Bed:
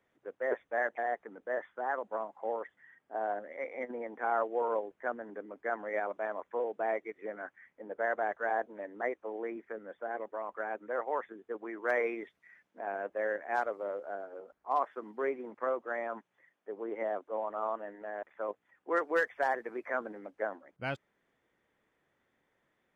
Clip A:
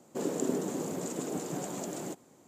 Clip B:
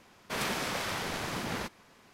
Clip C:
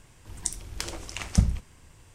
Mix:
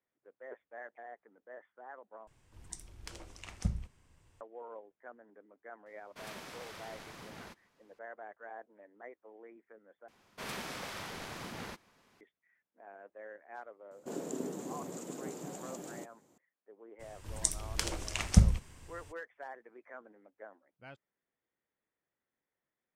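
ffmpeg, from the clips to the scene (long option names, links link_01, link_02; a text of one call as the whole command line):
ffmpeg -i bed.wav -i cue0.wav -i cue1.wav -i cue2.wav -filter_complex "[3:a]asplit=2[link_01][link_02];[2:a]asplit=2[link_03][link_04];[0:a]volume=-15.5dB[link_05];[link_01]highshelf=frequency=4300:gain=-4.5[link_06];[link_05]asplit=3[link_07][link_08][link_09];[link_07]atrim=end=2.274[link_10];[link_06]atrim=end=2.14,asetpts=PTS-STARTPTS,volume=-12dB[link_11];[link_08]atrim=start=4.406:end=10.084[link_12];[link_04]atrim=end=2.13,asetpts=PTS-STARTPTS,volume=-8.5dB[link_13];[link_09]atrim=start=12.206[link_14];[link_03]atrim=end=2.13,asetpts=PTS-STARTPTS,volume=-14.5dB,afade=type=in:duration=0.004:curve=hsin,afade=type=out:start_time=2.126:duration=0.004:curve=hsin,adelay=5860[link_15];[1:a]atrim=end=2.47,asetpts=PTS-STARTPTS,volume=-7.5dB,afade=type=in:duration=0.004:curve=hsin,afade=type=out:start_time=2.466:duration=0.004:curve=hsin,adelay=13910[link_16];[link_02]atrim=end=2.14,asetpts=PTS-STARTPTS,volume=-0.5dB,afade=type=in:duration=0.02,afade=type=out:start_time=2.12:duration=0.02,adelay=16990[link_17];[link_10][link_11]acrossfade=duration=0.004:curve1=hsin:curve2=hsin[link_18];[link_18][link_12]acrossfade=duration=0.004:curve1=hsin:curve2=hsin[link_19];[link_19][link_13]acrossfade=duration=0.004:curve1=hsin:curve2=hsin[link_20];[link_20][link_14]acrossfade=duration=0.004:curve1=hsin:curve2=hsin[link_21];[link_21][link_15][link_16][link_17]amix=inputs=4:normalize=0" out.wav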